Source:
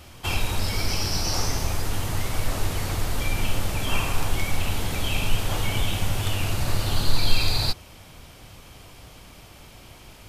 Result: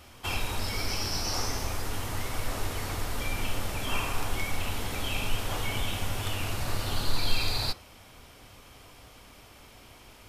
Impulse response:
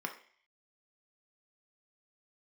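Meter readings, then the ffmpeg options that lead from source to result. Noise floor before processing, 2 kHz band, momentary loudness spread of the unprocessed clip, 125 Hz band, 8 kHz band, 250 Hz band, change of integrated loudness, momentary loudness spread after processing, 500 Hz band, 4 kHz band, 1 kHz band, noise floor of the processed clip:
-47 dBFS, -3.5 dB, 21 LU, -8.0 dB, -5.0 dB, -5.5 dB, -5.5 dB, 21 LU, -4.0 dB, -4.5 dB, -3.0 dB, -52 dBFS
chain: -filter_complex "[0:a]asplit=2[a][b];[1:a]atrim=start_sample=2205[c];[b][c]afir=irnorm=-1:irlink=0,volume=-8dB[d];[a][d]amix=inputs=2:normalize=0,volume=-6.5dB"

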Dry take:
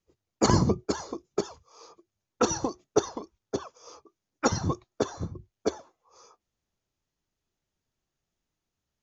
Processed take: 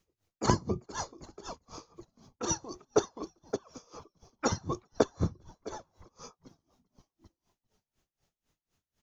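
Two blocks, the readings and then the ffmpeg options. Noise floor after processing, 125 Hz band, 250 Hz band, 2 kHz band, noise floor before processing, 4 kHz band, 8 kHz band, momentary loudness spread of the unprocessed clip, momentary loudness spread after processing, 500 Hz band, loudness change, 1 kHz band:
under -85 dBFS, -5.0 dB, -6.0 dB, -4.0 dB, under -85 dBFS, -5.0 dB, n/a, 15 LU, 21 LU, -4.0 dB, -4.5 dB, -4.0 dB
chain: -filter_complex "[0:a]acompressor=threshold=-32dB:ratio=2.5,asplit=6[a][b][c][d][e][f];[b]adelay=396,afreqshift=-85,volume=-22.5dB[g];[c]adelay=792,afreqshift=-170,volume=-26.2dB[h];[d]adelay=1188,afreqshift=-255,volume=-30dB[i];[e]adelay=1584,afreqshift=-340,volume=-33.7dB[j];[f]adelay=1980,afreqshift=-425,volume=-37.5dB[k];[a][g][h][i][j][k]amix=inputs=6:normalize=0,aeval=exprs='val(0)*pow(10,-26*(0.5-0.5*cos(2*PI*4*n/s))/20)':c=same,volume=9dB"

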